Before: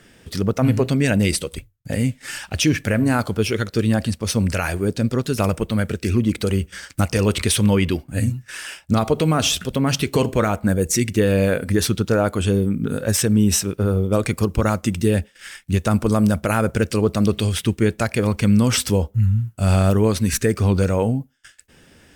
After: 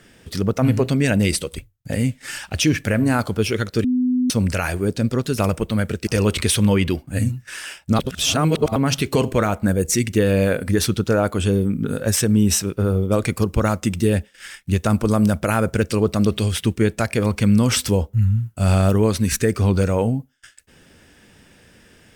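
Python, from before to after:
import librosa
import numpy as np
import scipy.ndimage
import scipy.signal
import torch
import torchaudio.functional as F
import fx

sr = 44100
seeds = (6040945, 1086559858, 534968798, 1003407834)

y = fx.edit(x, sr, fx.bleep(start_s=3.84, length_s=0.46, hz=251.0, db=-15.5),
    fx.cut(start_s=6.07, length_s=1.01),
    fx.reverse_span(start_s=9.0, length_s=0.77), tone=tone)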